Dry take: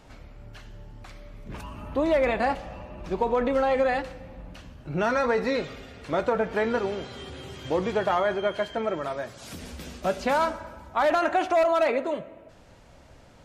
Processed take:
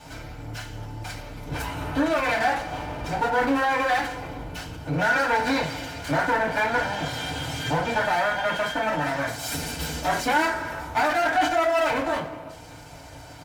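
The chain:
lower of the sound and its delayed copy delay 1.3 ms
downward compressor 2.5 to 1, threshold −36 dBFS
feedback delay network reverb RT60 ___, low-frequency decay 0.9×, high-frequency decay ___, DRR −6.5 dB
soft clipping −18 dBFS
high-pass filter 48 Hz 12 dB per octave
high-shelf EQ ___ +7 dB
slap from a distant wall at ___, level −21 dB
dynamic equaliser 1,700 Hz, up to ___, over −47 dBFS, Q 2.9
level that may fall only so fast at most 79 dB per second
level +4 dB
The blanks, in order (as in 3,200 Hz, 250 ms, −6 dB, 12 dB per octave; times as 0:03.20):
0.3 s, 0.8×, 5,800 Hz, 30 metres, +6 dB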